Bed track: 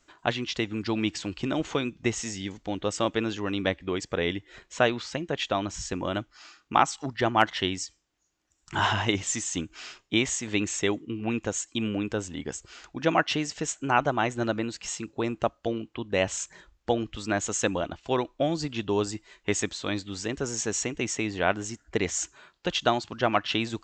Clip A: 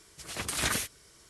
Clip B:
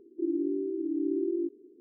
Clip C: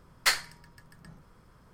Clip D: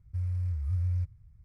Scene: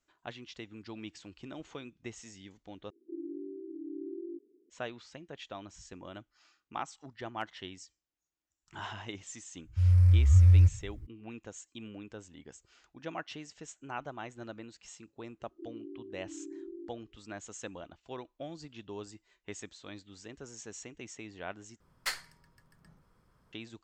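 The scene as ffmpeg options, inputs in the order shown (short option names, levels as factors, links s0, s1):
-filter_complex "[2:a]asplit=2[s0][s1];[0:a]volume=0.15[s2];[4:a]dynaudnorm=f=130:g=3:m=3.55[s3];[s2]asplit=3[s4][s5][s6];[s4]atrim=end=2.904[s7];[s0]atrim=end=1.8,asetpts=PTS-STARTPTS,volume=0.266[s8];[s5]atrim=start=4.696:end=21.804[s9];[3:a]atrim=end=1.73,asetpts=PTS-STARTPTS,volume=0.316[s10];[s6]atrim=start=23.526[s11];[s3]atrim=end=1.44,asetpts=PTS-STARTPTS,volume=0.891,afade=t=in:d=0.004:c=hsin,afade=t=out:st=1.436:d=0.004:c=hsin,adelay=9630[s12];[s1]atrim=end=1.8,asetpts=PTS-STARTPTS,volume=0.178,afade=t=in:d=0.004:c=hsin,afade=t=out:st=1.796:d=0.004:c=hsin,adelay=679140S[s13];[s7][s8]acrossfade=d=0.004:c1=hsin:c2=hsin[s14];[s14][s9]acrossfade=d=0.004:c1=hsin:c2=hsin[s15];[s15][s10]acrossfade=d=0.004:c1=hsin:c2=hsin[s16];[s16][s11]acrossfade=d=0.004:c1=hsin:c2=hsin[s17];[s17][s12][s13]amix=inputs=3:normalize=0"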